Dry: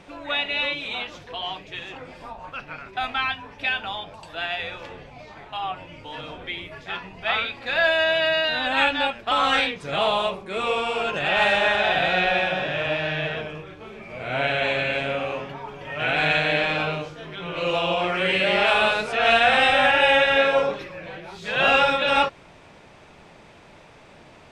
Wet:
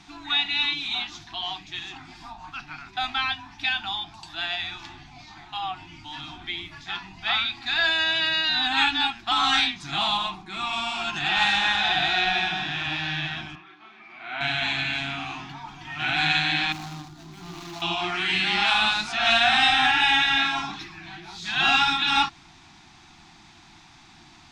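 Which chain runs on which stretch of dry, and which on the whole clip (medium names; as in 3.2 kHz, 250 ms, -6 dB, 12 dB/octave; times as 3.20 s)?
10.17–10.73 s: treble shelf 3.6 kHz -6.5 dB + comb 6.6 ms, depth 40%
13.55–14.41 s: band-pass 450–2500 Hz + peaking EQ 860 Hz -6 dB 0.23 oct
16.72–17.82 s: median filter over 25 samples + compression 3:1, threshold -29 dBFS
whole clip: elliptic band-stop 350–730 Hz, stop band 50 dB; high-order bell 5 kHz +8.5 dB 1.2 oct; hum notches 60/120/180 Hz; trim -1.5 dB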